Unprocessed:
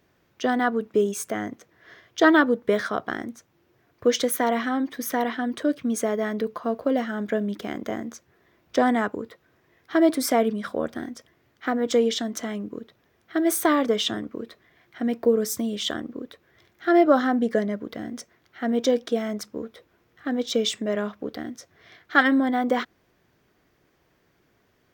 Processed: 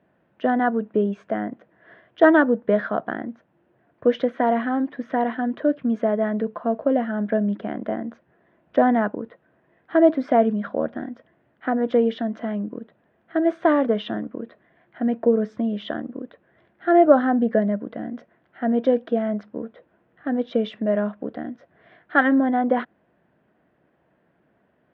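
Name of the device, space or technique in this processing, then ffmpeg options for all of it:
bass cabinet: -af "highpass=90,equalizer=f=100:t=q:w=4:g=-8,equalizer=f=200:t=q:w=4:g=4,equalizer=f=400:t=q:w=4:g=-4,equalizer=f=630:t=q:w=4:g=5,equalizer=f=1.2k:t=q:w=4:g=-5,equalizer=f=2.2k:t=q:w=4:g=-8,lowpass=f=2.4k:w=0.5412,lowpass=f=2.4k:w=1.3066,volume=2dB"

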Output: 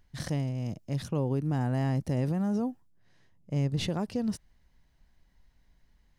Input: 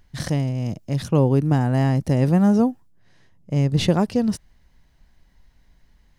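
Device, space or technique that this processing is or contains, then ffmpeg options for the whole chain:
clipper into limiter: -af "asoftclip=type=hard:threshold=-7dB,alimiter=limit=-13.5dB:level=0:latency=1:release=84,volume=-8dB"

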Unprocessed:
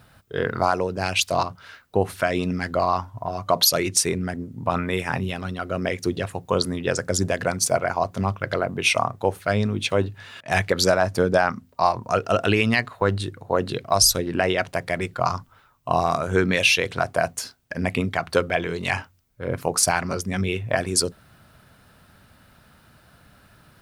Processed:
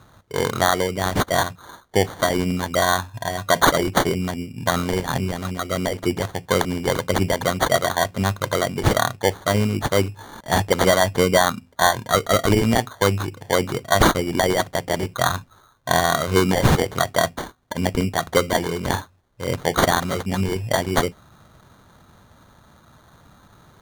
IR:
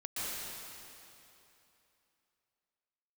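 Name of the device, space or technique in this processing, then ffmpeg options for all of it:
crushed at another speed: -af "asetrate=22050,aresample=44100,acrusher=samples=34:mix=1:aa=0.000001,asetrate=88200,aresample=44100,volume=2.5dB"

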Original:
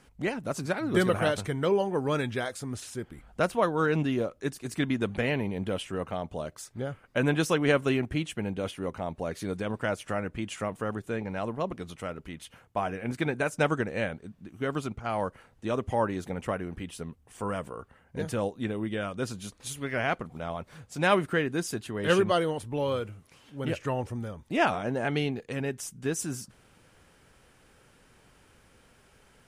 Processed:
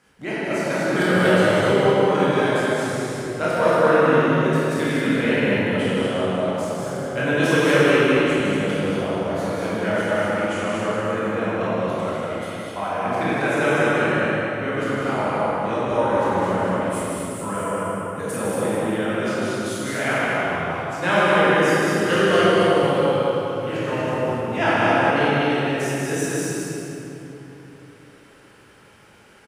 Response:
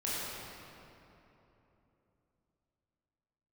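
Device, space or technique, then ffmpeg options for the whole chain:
stadium PA: -filter_complex "[0:a]asettb=1/sr,asplit=3[a][b][c];[a]atrim=end=16.874[d];[b]atrim=start=16.87:end=18.66,asetpts=PTS-STARTPTS,afade=t=in:d=0.004:c=qsin,afade=t=out:st=1.786:d=0.004:c=qsin,highshelf=f=6.6k:t=q:w=1.5:g=8.5[e];[c]atrim=start=18.656[f];[d][e]acrossfade=d=0.004:c1=hsin:c2=qsin[g];[g][f]acrossfade=d=0.004:c1=qsin:c2=hsin,highpass=f=170:p=1,equalizer=f=1.7k:t=o:w=1.8:g=3,aecho=1:1:154.5|236.2:0.562|0.562[h];[1:a]atrim=start_sample=2205[i];[h][i]afir=irnorm=-1:irlink=0,aecho=1:1:192|384|576|768|960:0.398|0.163|0.0669|0.0274|0.0112"

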